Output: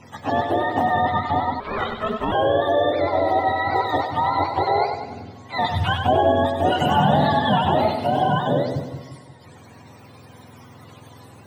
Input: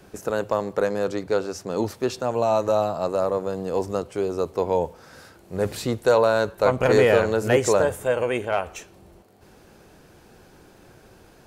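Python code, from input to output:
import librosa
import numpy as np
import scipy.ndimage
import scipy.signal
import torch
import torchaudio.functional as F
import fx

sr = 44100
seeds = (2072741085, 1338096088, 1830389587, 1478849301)

p1 = fx.octave_mirror(x, sr, pivot_hz=610.0)
p2 = fx.over_compress(p1, sr, threshold_db=-26.0, ratio=-0.5)
p3 = p1 + F.gain(torch.from_numpy(p2), -2.0).numpy()
p4 = fx.echo_split(p3, sr, split_hz=350.0, low_ms=178, high_ms=97, feedback_pct=52, wet_db=-6.5)
y = fx.ring_mod(p4, sr, carrier_hz=320.0, at=(1.6, 2.32))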